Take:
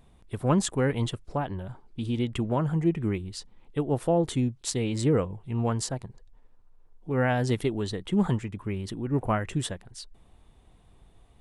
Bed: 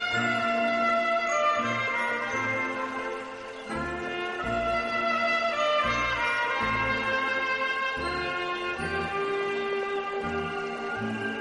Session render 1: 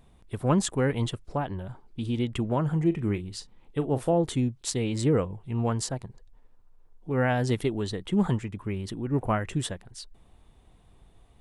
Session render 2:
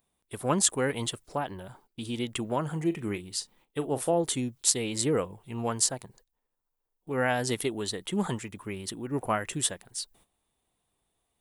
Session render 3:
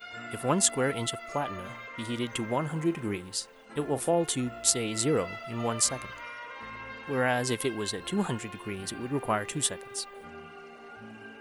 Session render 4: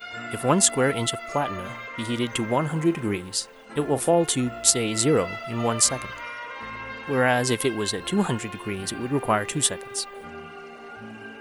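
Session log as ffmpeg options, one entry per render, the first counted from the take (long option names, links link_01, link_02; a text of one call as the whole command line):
ffmpeg -i in.wav -filter_complex "[0:a]asettb=1/sr,asplit=3[link_01][link_02][link_03];[link_01]atrim=end=2.624[link_04];[link_02]atrim=start=2.62:end=4.13,asetpts=PTS-STARTPTS,afade=type=in:duration=0.004:curve=qsin,afade=type=out:start_time=1.506:duration=0.004:curve=qsin,asplit=2[link_05][link_06];[link_06]adelay=39,volume=-14dB[link_07];[link_05][link_07]amix=inputs=2:normalize=0,atrim=end_sample=66591[link_08];[link_03]atrim=start=4.126[link_09];[link_04][link_08]acrossfade=duration=0.004:curve1=hsin:curve2=qsin[link_10];[link_10][link_09]acrossfade=duration=0.004:curve1=qsin:curve2=hsin" out.wav
ffmpeg -i in.wav -af "aemphasis=mode=production:type=bsi,agate=range=-15dB:threshold=-58dB:ratio=16:detection=peak" out.wav
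ffmpeg -i in.wav -i bed.wav -filter_complex "[1:a]volume=-15dB[link_01];[0:a][link_01]amix=inputs=2:normalize=0" out.wav
ffmpeg -i in.wav -af "volume=6dB,alimiter=limit=-2dB:level=0:latency=1" out.wav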